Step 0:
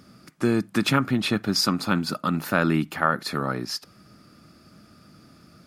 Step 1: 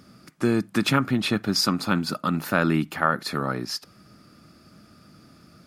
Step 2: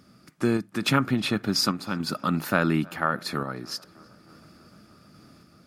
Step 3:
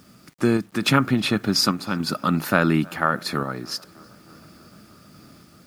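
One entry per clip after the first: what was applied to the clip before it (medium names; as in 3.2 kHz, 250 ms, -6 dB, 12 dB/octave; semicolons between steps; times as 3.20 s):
no audible change
random-step tremolo; tape echo 312 ms, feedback 77%, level -24 dB, low-pass 2.9 kHz
bit crusher 10-bit; trim +4 dB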